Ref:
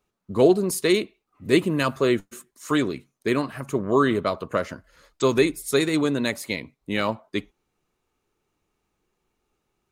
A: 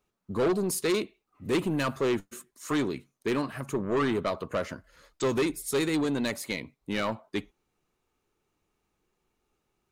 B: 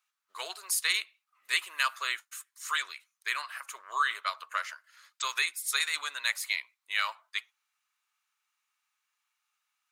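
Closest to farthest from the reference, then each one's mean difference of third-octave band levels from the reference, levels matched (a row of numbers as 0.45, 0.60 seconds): A, B; 3.0, 14.5 decibels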